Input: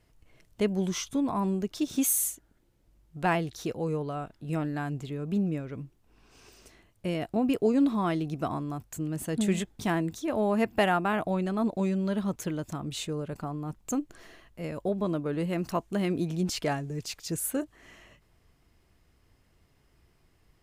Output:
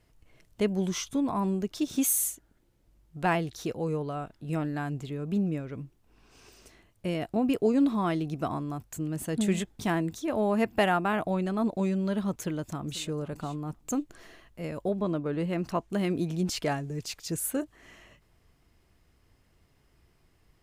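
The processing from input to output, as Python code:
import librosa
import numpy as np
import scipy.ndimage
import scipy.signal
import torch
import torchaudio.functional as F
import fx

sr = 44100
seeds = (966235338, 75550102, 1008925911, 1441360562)

y = fx.echo_throw(x, sr, start_s=12.38, length_s=0.69, ms=490, feedback_pct=15, wet_db=-17.5)
y = fx.high_shelf(y, sr, hz=8000.0, db=-10.0, at=(14.99, 15.9))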